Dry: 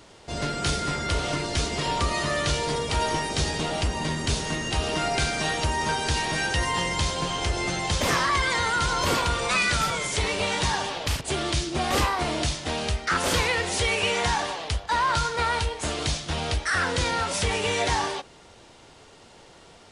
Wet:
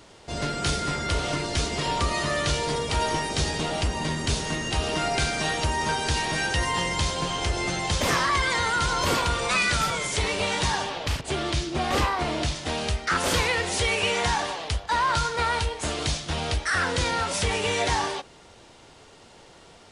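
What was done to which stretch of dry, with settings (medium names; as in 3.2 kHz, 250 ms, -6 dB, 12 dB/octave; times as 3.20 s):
10.84–12.56 s: treble shelf 7.2 kHz -9 dB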